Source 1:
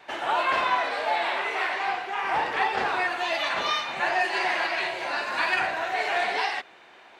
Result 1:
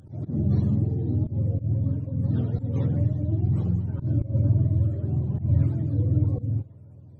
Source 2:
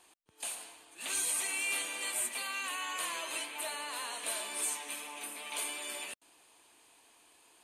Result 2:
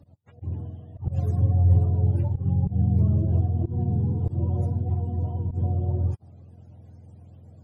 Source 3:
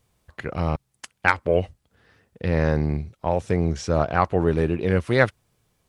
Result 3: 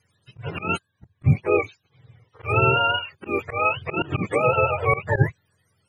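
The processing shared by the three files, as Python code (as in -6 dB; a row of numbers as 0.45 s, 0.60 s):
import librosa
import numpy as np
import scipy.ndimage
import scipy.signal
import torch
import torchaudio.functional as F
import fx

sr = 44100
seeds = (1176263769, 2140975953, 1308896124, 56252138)

y = fx.octave_mirror(x, sr, pivot_hz=460.0)
y = fx.auto_swell(y, sr, attack_ms=124.0)
y = fx.graphic_eq_10(y, sr, hz=(125, 250, 8000), db=(3, -7, 10))
y = y * 10.0 ** (-24 / 20.0) / np.sqrt(np.mean(np.square(y)))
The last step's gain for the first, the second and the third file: +1.0 dB, +16.5 dB, +4.0 dB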